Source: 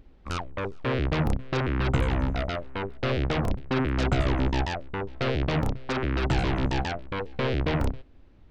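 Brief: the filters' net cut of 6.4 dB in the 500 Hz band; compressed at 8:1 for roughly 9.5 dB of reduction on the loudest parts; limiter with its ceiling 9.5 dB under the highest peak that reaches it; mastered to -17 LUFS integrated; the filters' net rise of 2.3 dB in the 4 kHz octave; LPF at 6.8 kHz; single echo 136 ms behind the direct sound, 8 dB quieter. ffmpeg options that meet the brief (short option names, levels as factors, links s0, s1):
-af "lowpass=6800,equalizer=f=500:t=o:g=-8.5,equalizer=f=4000:t=o:g=3.5,acompressor=threshold=0.0316:ratio=8,alimiter=level_in=1.33:limit=0.0631:level=0:latency=1,volume=0.75,aecho=1:1:136:0.398,volume=9.44"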